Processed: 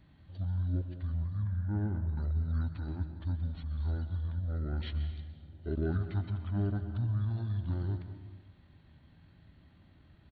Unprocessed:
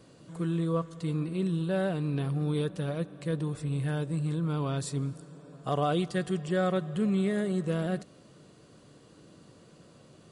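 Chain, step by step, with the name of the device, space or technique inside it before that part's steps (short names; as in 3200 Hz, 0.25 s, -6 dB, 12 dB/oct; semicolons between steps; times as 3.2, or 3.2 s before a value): 1.43–2.09 LPF 6300 Hz 24 dB/oct; monster voice (pitch shift -10.5 st; formant shift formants -4.5 st; low shelf 150 Hz +4 dB; reverb RT60 1.2 s, pre-delay 0.119 s, DRR 9 dB); gain -6 dB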